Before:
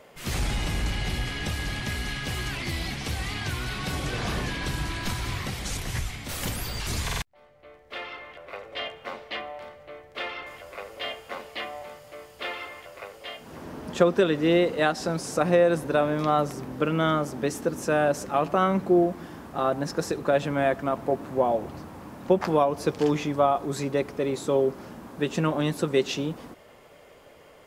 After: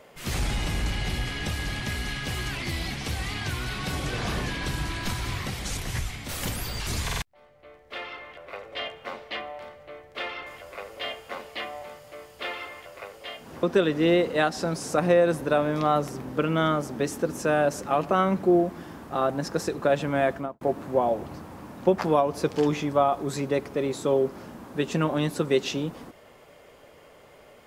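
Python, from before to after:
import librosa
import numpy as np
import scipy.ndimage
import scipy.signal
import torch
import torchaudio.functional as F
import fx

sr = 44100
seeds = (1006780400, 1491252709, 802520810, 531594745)

y = fx.studio_fade_out(x, sr, start_s=20.76, length_s=0.28)
y = fx.edit(y, sr, fx.cut(start_s=13.63, length_s=0.43), tone=tone)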